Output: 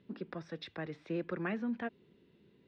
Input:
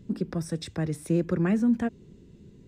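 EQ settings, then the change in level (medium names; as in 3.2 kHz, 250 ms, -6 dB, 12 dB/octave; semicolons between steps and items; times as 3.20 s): high-pass 950 Hz 6 dB/octave; low-pass 3.9 kHz 24 dB/octave; distance through air 71 m; -1.0 dB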